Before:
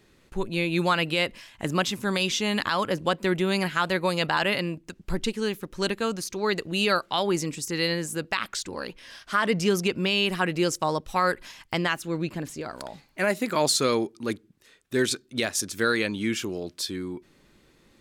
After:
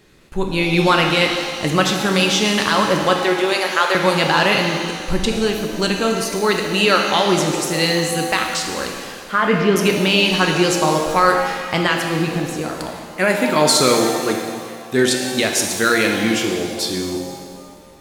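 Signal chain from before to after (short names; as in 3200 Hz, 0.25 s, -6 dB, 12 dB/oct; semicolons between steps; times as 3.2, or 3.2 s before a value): 3.22–3.95 HPF 360 Hz 24 dB/oct; 9.12–9.76 air absorption 290 m; shimmer reverb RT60 1.8 s, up +7 st, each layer -8 dB, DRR 2 dB; gain +7 dB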